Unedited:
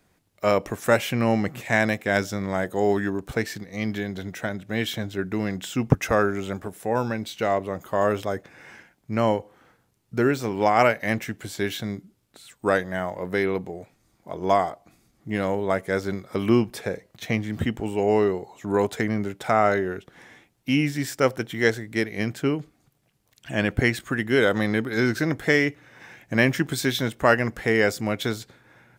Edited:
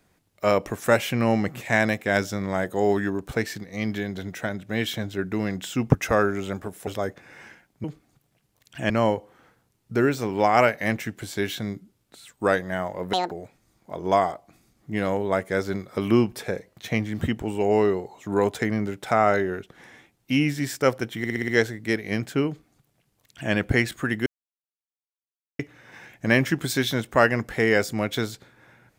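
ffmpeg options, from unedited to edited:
-filter_complex "[0:a]asplit=13[s0][s1][s2][s3][s4][s5][s6][s7][s8][s9][s10][s11][s12];[s0]atrim=end=6.872[s13];[s1]atrim=start=8.148:end=9.122[s14];[s2]atrim=start=22.548:end=23.612[s15];[s3]atrim=start=9.118:end=13.354[s16];[s4]atrim=start=13.35:end=13.69,asetpts=PTS-STARTPTS,asetrate=82467,aresample=44100,atrim=end_sample=8018,asetpts=PTS-STARTPTS[s17];[s5]atrim=start=13.686:end=21.622[s18];[s6]atrim=start=21.558:end=21.622[s19];[s7]atrim=start=21.558:end=21.622[s20];[s8]atrim=start=21.558:end=21.622[s21];[s9]atrim=start=21.558:end=21.622[s22];[s10]atrim=start=21.558:end=24.34,asetpts=PTS-STARTPTS,afade=t=out:st=2.778:d=0.004:c=hsin[s23];[s11]atrim=start=24.34:end=25.67,asetpts=PTS-STARTPTS,volume=0[s24];[s12]atrim=start=25.67,asetpts=PTS-STARTPTS,afade=t=in:d=0.004:c=hsin[s25];[s13][s14]acrossfade=d=0.004:c1=hsin:c2=hsin[s26];[s26][s15]acrossfade=d=0.004:c1=hsin:c2=hsin[s27];[s27][s16]acrossfade=d=0.004:c1=hsin:c2=hsin[s28];[s28][s17]acrossfade=d=0.004:c1=hsin:c2=hsin[s29];[s29][s18]acrossfade=d=0.004:c1=hsin:c2=hsin[s30];[s30][s19]acrossfade=d=0.004:c1=hsin:c2=hsin[s31];[s31][s20]acrossfade=d=0.004:c1=hsin:c2=hsin[s32];[s32][s21]acrossfade=d=0.004:c1=hsin:c2=hsin[s33];[s33][s22]acrossfade=d=0.004:c1=hsin:c2=hsin[s34];[s23][s24][s25]concat=n=3:v=0:a=1[s35];[s34][s35]acrossfade=d=0.004:c1=hsin:c2=hsin"

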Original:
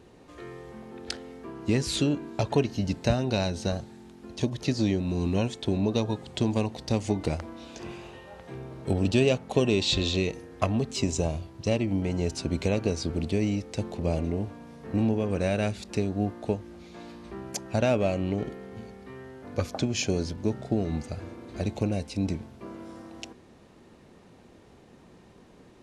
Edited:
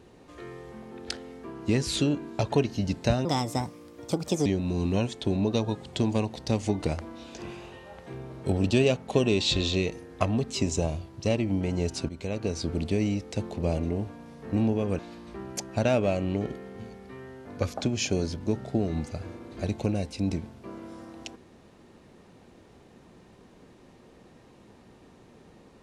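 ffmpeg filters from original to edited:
-filter_complex "[0:a]asplit=5[s0][s1][s2][s3][s4];[s0]atrim=end=3.254[s5];[s1]atrim=start=3.25:end=4.87,asetpts=PTS-STARTPTS,asetrate=59094,aresample=44100[s6];[s2]atrim=start=4.866:end=12.5,asetpts=PTS-STARTPTS,afade=t=out:st=7.63:d=0.004:c=hsin:silence=0.199526[s7];[s3]atrim=start=12.5:end=15.402,asetpts=PTS-STARTPTS,afade=t=in:d=0.58:silence=0.199526[s8];[s4]atrim=start=16.958[s9];[s5][s6]acrossfade=d=0.004:c1=hsin:c2=hsin[s10];[s7][s8]concat=n=2:v=0:a=1[s11];[s10][s11]acrossfade=d=0.004:c1=hsin:c2=hsin[s12];[s12][s9]acrossfade=d=0.004:c1=hsin:c2=hsin"

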